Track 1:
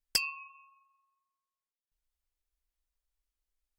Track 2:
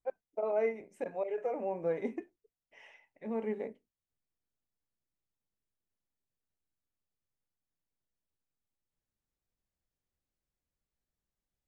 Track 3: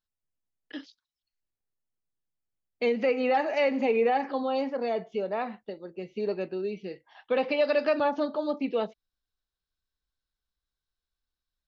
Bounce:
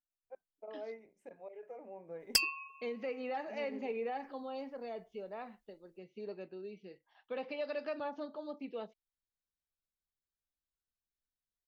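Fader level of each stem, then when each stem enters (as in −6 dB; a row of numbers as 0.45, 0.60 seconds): +0.5, −14.0, −14.0 decibels; 2.20, 0.25, 0.00 seconds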